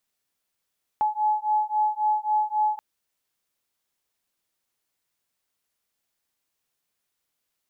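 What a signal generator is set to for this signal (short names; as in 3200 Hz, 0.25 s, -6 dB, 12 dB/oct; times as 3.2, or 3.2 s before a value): beating tones 850 Hz, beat 3.7 Hz, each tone -24 dBFS 1.78 s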